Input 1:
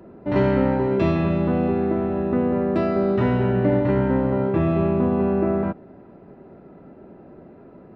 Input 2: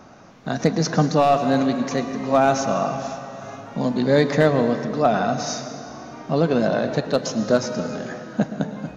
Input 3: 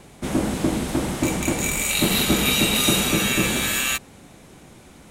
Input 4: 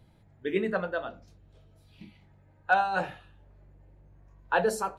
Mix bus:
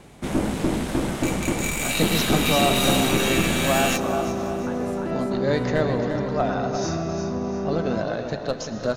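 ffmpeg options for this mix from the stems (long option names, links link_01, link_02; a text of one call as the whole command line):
ffmpeg -i stem1.wav -i stem2.wav -i stem3.wav -i stem4.wav -filter_complex "[0:a]alimiter=limit=-18dB:level=0:latency=1,adelay=2300,volume=-2dB[link_01];[1:a]asubboost=boost=8:cutoff=65,adelay=1350,volume=-5.5dB,asplit=2[link_02][link_03];[link_03]volume=-8dB[link_04];[2:a]aeval=exprs='(tanh(5.62*val(0)+0.55)-tanh(0.55))/5.62':channel_layout=same,highshelf=frequency=5100:gain=-5.5,volume=2dB,asplit=2[link_05][link_06];[link_06]volume=-15.5dB[link_07];[3:a]acompressor=threshold=-32dB:ratio=6,adelay=150,volume=-5dB,asplit=2[link_08][link_09];[link_09]volume=-3dB[link_10];[link_04][link_07][link_10]amix=inputs=3:normalize=0,aecho=0:1:347|694|1041|1388|1735:1|0.39|0.152|0.0593|0.0231[link_11];[link_01][link_02][link_05][link_08][link_11]amix=inputs=5:normalize=0" out.wav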